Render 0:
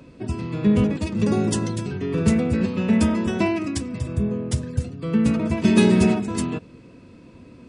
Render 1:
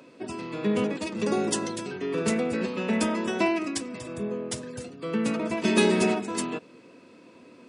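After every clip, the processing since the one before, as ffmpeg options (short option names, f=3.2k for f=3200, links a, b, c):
-af "highpass=340"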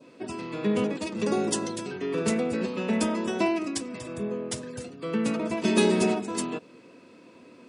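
-af "adynamicequalizer=threshold=0.00891:dfrequency=1900:dqfactor=1:tfrequency=1900:tqfactor=1:attack=5:release=100:ratio=0.375:range=2.5:mode=cutabove:tftype=bell"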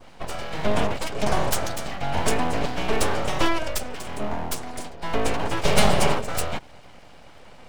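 -af "aeval=exprs='abs(val(0))':c=same,volume=6.5dB"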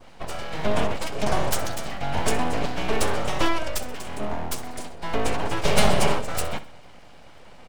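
-af "aecho=1:1:64|128|192|256:0.168|0.0739|0.0325|0.0143,volume=-1dB"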